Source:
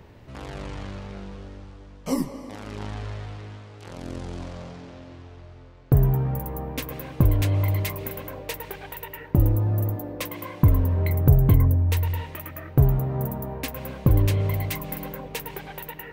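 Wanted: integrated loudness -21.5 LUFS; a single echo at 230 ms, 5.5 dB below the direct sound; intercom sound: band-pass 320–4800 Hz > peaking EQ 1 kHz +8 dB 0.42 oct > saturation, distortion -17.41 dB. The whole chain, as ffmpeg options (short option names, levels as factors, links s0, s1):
-af "highpass=320,lowpass=4800,equalizer=f=1000:t=o:w=0.42:g=8,aecho=1:1:230:0.531,asoftclip=threshold=0.106,volume=4.47"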